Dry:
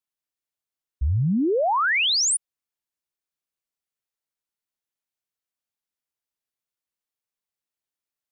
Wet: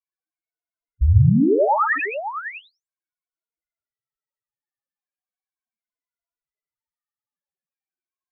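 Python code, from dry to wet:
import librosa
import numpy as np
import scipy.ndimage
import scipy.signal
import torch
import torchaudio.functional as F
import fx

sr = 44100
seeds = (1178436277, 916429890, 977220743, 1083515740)

y = fx.spec_ripple(x, sr, per_octave=1.8, drift_hz=-0.38, depth_db=8)
y = scipy.signal.sosfilt(scipy.signal.butter(6, 2500.0, 'lowpass', fs=sr, output='sos'), y)
y = fx.rider(y, sr, range_db=10, speed_s=0.5)
y = fx.echo_multitap(y, sr, ms=(51, 73, 124, 557), db=(-4.5, -8.5, -4.5, -10.5))
y = fx.spec_topn(y, sr, count=4)
y = y * 10.0 ** (5.0 / 20.0)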